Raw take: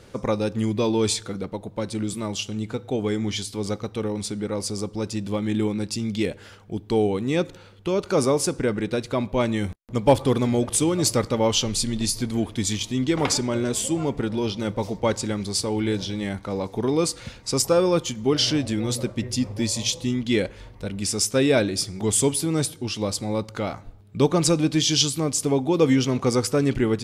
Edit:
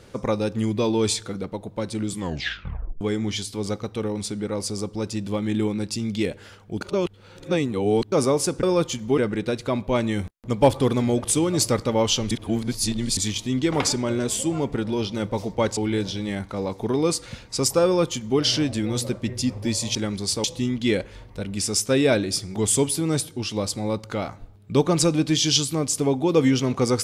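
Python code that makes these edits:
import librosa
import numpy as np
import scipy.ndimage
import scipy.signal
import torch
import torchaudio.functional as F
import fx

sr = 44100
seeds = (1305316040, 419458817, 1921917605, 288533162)

y = fx.edit(x, sr, fx.tape_stop(start_s=2.11, length_s=0.9),
    fx.reverse_span(start_s=6.81, length_s=1.31),
    fx.reverse_span(start_s=11.76, length_s=0.86),
    fx.move(start_s=15.22, length_s=0.49, to_s=19.89),
    fx.duplicate(start_s=17.79, length_s=0.55, to_s=8.63), tone=tone)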